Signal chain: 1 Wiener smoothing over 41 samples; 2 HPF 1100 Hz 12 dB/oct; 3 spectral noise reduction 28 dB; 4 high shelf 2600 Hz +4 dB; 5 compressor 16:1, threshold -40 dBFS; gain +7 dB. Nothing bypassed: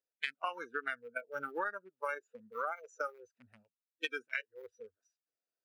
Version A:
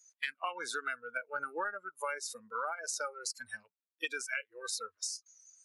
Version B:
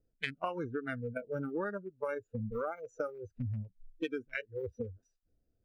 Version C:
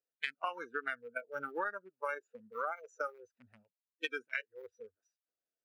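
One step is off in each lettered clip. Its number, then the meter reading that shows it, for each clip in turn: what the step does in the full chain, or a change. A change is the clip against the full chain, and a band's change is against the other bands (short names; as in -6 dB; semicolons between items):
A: 1, 8 kHz band +24.0 dB; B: 2, 250 Hz band +17.5 dB; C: 4, 8 kHz band -2.5 dB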